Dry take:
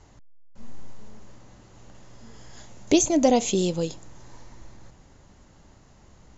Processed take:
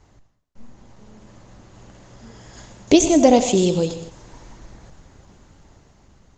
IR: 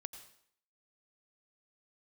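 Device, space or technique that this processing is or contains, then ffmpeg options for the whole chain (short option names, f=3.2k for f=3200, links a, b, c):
speakerphone in a meeting room: -filter_complex "[1:a]atrim=start_sample=2205[a];[0:a][a]afir=irnorm=-1:irlink=0,dynaudnorm=f=330:g=7:m=6.5dB,volume=4dB" -ar 48000 -c:a libopus -b:a 20k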